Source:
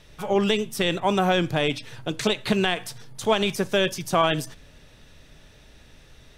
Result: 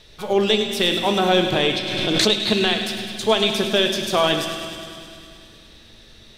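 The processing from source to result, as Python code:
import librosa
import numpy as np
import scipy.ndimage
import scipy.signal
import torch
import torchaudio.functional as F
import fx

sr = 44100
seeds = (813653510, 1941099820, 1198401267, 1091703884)

y = fx.graphic_eq_15(x, sr, hz=(160, 400, 4000), db=(-3, 4, 10))
y = fx.echo_wet_highpass(y, sr, ms=103, feedback_pct=76, hz=1500.0, wet_db=-9.5)
y = fx.rev_fdn(y, sr, rt60_s=2.3, lf_ratio=1.45, hf_ratio=0.95, size_ms=27.0, drr_db=6.0)
y = fx.pre_swell(y, sr, db_per_s=26.0, at=(1.52, 2.34))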